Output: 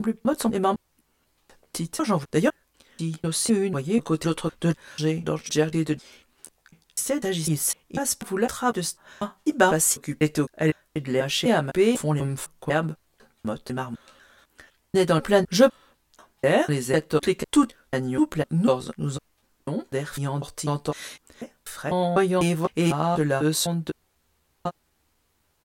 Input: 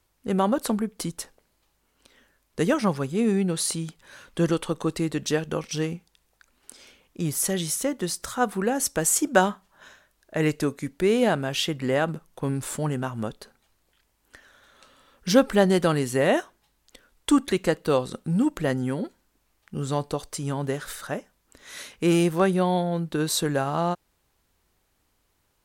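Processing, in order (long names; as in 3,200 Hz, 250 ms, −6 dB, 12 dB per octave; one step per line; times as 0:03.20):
slices reordered back to front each 249 ms, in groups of 4
double-tracking delay 13 ms −5 dB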